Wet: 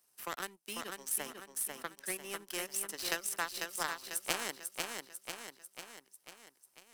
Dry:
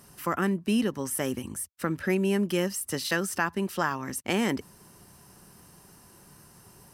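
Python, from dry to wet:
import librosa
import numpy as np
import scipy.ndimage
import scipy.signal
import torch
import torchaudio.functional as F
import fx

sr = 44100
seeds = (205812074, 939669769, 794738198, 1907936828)

y = scipy.signal.sosfilt(scipy.signal.butter(2, 390.0, 'highpass', fs=sr, output='sos'), x)
y = fx.high_shelf(y, sr, hz=2800.0, db=10.0)
y = fx.power_curve(y, sr, exponent=2.0)
y = fx.echo_feedback(y, sr, ms=495, feedback_pct=43, wet_db=-5.5)
y = fx.band_squash(y, sr, depth_pct=40)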